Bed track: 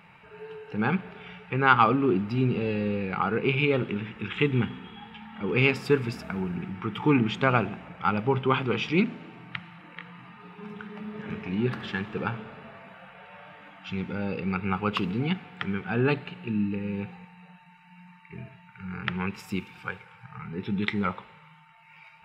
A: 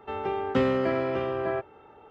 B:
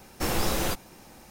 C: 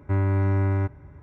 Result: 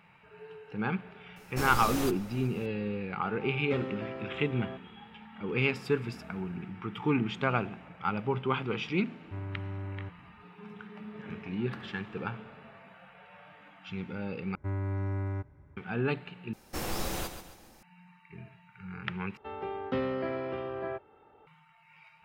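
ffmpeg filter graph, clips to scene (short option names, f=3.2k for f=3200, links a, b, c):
-filter_complex "[2:a]asplit=2[a][b];[1:a]asplit=2[c][d];[3:a]asplit=2[e][f];[0:a]volume=-6dB[g];[a]asplit=2[h][i];[i]adelay=373.2,volume=-15dB,highshelf=f=4k:g=-8.4[j];[h][j]amix=inputs=2:normalize=0[k];[b]aecho=1:1:136|272|408|544:0.335|0.137|0.0563|0.0231[l];[d]lowpass=f=5k:w=0.5412,lowpass=f=5k:w=1.3066[m];[g]asplit=4[n][o][p][q];[n]atrim=end=14.554[r];[f]atrim=end=1.22,asetpts=PTS-STARTPTS,volume=-10.5dB[s];[o]atrim=start=15.766:end=16.534[t];[l]atrim=end=1.3,asetpts=PTS-STARTPTS,volume=-7.5dB[u];[p]atrim=start=17.826:end=19.374[v];[m]atrim=end=2.1,asetpts=PTS-STARTPTS,volume=-7.5dB[w];[q]atrim=start=21.466[x];[k]atrim=end=1.3,asetpts=PTS-STARTPTS,volume=-6.5dB,afade=t=in:d=0.004:c=hsin,afade=t=out:st=1.296:d=0.004:c=hsin,adelay=1360[y];[c]atrim=end=2.1,asetpts=PTS-STARTPTS,volume=-13.5dB,afade=t=in:d=0.004:c=hsin,afade=t=out:st=2.096:d=0.004:c=hsin,adelay=3160[z];[e]atrim=end=1.22,asetpts=PTS-STARTPTS,volume=-16dB,afade=t=in:d=0.004:c=hsin,afade=t=out:st=1.216:d=0.004:c=hsin,adelay=406602S[aa];[r][s]acrossfade=d=0.004:c1=hsin:c2=hsin[ab];[ab][t]acrossfade=d=0.004:c1=hsin:c2=hsin[ac];[ac][u]acrossfade=d=0.004:c1=hsin:c2=hsin[ad];[ad][v]acrossfade=d=0.004:c1=hsin:c2=hsin[ae];[ae][w]acrossfade=d=0.004:c1=hsin:c2=hsin[af];[af][x]acrossfade=d=0.004:c1=hsin:c2=hsin[ag];[ag][y][z][aa]amix=inputs=4:normalize=0"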